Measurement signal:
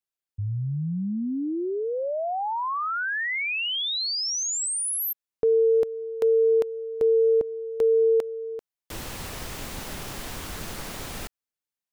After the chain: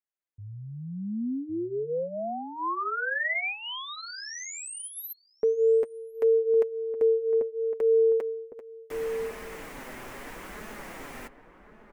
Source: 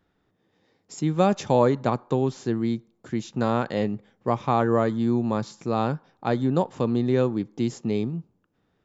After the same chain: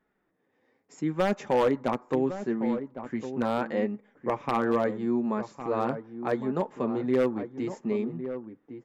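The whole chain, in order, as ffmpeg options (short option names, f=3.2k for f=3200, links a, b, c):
-filter_complex "[0:a]volume=10.5dB,asoftclip=hard,volume=-10.5dB,flanger=delay=4.7:depth=3.3:regen=-24:speed=0.75:shape=sinusoidal,equalizer=f=125:t=o:w=1:g=-5,equalizer=f=250:t=o:w=1:g=7,equalizer=f=500:t=o:w=1:g=6,equalizer=f=1k:t=o:w=1:g=5,equalizer=f=2k:t=o:w=1:g=10,equalizer=f=4k:t=o:w=1:g=-6,aeval=exprs='0.355*(abs(mod(val(0)/0.355+3,4)-2)-1)':c=same,asplit=2[a][b];[b]adelay=1108,volume=-10dB,highshelf=f=4k:g=-24.9[c];[a][c]amix=inputs=2:normalize=0,volume=-7dB"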